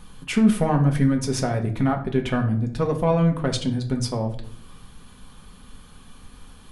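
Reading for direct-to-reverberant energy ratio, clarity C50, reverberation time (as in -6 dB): 2.5 dB, 11.0 dB, 0.60 s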